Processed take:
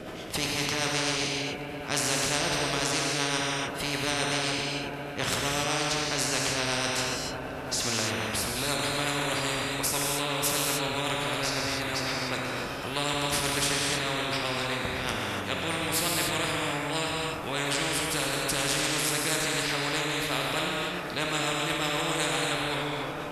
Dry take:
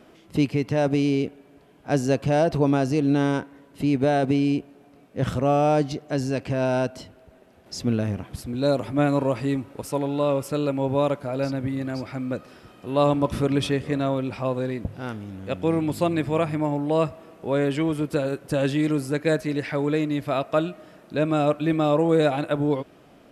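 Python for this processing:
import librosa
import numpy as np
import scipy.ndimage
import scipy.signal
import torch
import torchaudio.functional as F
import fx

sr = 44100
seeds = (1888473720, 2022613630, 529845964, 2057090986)

y = fx.rotary(x, sr, hz=8.0)
y = fx.echo_wet_lowpass(y, sr, ms=331, feedback_pct=78, hz=2900.0, wet_db=-22.5)
y = fx.rev_gated(y, sr, seeds[0], gate_ms=320, shape='flat', drr_db=-1.0)
y = fx.spectral_comp(y, sr, ratio=4.0)
y = y * 10.0 ** (-5.0 / 20.0)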